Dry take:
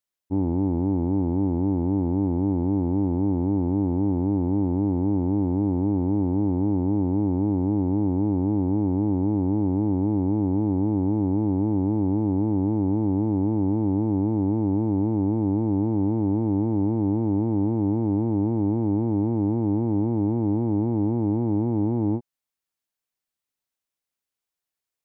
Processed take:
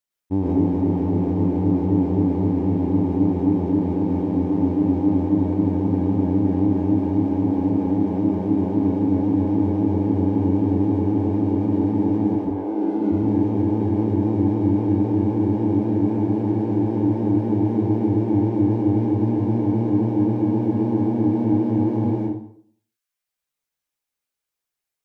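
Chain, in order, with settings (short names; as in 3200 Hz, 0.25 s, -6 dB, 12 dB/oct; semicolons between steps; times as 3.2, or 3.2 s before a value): 12.35–13.11 HPF 470 Hz -> 180 Hz 24 dB/oct; reverb removal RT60 0.82 s; in parallel at -8 dB: crossover distortion -40.5 dBFS; on the sum: plate-style reverb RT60 0.6 s, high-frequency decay 0.85×, pre-delay 90 ms, DRR -4 dB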